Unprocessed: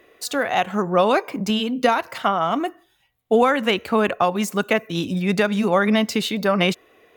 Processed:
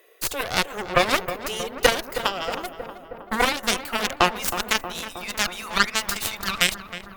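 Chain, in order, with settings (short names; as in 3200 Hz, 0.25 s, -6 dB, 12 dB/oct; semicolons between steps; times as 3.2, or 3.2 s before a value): high-pass sweep 440 Hz -> 1300 Hz, 2.34–5.49; RIAA curve recording; added harmonics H 5 -25 dB, 6 -18 dB, 7 -11 dB, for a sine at 0.5 dBFS; on a send: darkening echo 0.316 s, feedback 75%, low-pass 1600 Hz, level -10 dB; on the sum: gain -3.5 dB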